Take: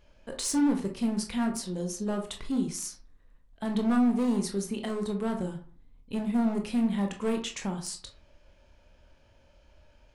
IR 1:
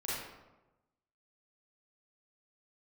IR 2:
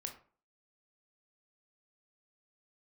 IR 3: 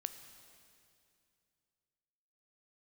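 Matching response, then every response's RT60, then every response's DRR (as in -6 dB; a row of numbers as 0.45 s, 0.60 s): 2; 1.1 s, 0.45 s, 2.5 s; -9.0 dB, 3.5 dB, 9.0 dB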